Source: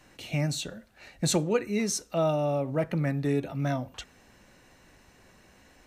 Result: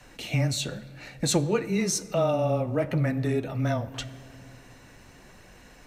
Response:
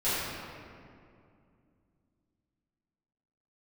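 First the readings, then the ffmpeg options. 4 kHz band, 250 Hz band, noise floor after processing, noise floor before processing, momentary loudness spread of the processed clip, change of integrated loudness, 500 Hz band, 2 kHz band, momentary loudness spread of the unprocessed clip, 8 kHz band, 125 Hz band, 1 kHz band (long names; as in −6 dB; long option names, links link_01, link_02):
+3.0 dB, +1.5 dB, −52 dBFS, −59 dBFS, 13 LU, +2.0 dB, +1.5 dB, +2.5 dB, 9 LU, +2.5 dB, +3.0 dB, +1.5 dB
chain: -filter_complex "[0:a]aeval=exprs='val(0)+0.000708*(sin(2*PI*50*n/s)+sin(2*PI*2*50*n/s)/2+sin(2*PI*3*50*n/s)/3+sin(2*PI*4*50*n/s)/4+sin(2*PI*5*50*n/s)/5)':channel_layout=same,acompressor=threshold=-33dB:ratio=1.5,afreqshift=-13,flanger=delay=1.1:depth=9.8:regen=-45:speed=0.91:shape=triangular,asplit=2[link_01][link_02];[1:a]atrim=start_sample=2205[link_03];[link_02][link_03]afir=irnorm=-1:irlink=0,volume=-26.5dB[link_04];[link_01][link_04]amix=inputs=2:normalize=0,volume=9dB"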